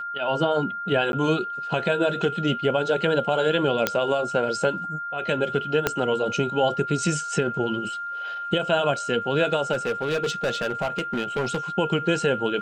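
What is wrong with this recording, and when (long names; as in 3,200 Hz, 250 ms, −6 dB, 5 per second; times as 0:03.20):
whistle 1,400 Hz −29 dBFS
0:01.12–0:01.13: drop-out 11 ms
0:03.87: click −5 dBFS
0:05.87: click −5 dBFS
0:09.72–0:11.58: clipping −20.5 dBFS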